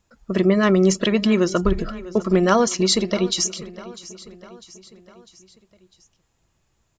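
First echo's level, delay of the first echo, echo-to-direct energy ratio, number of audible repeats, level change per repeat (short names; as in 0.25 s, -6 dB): -18.0 dB, 0.65 s, -16.5 dB, 4, -5.5 dB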